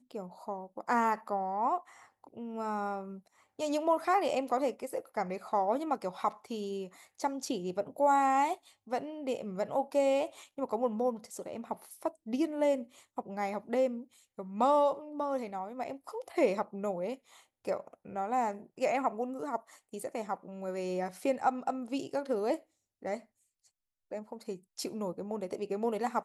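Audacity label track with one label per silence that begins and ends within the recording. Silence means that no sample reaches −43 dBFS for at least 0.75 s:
23.190000	24.120000	silence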